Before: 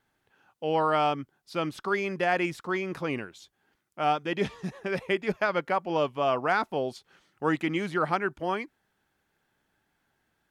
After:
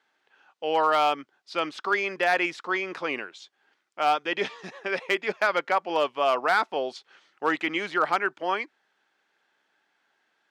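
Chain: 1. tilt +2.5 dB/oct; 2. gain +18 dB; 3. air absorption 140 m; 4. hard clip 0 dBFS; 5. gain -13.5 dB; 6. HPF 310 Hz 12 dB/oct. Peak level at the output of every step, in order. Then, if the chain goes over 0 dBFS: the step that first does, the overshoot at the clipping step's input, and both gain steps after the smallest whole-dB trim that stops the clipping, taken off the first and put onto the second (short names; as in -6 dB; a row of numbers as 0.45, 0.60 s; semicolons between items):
-10.5, +7.5, +6.0, 0.0, -13.5, -10.5 dBFS; step 2, 6.0 dB; step 2 +12 dB, step 5 -7.5 dB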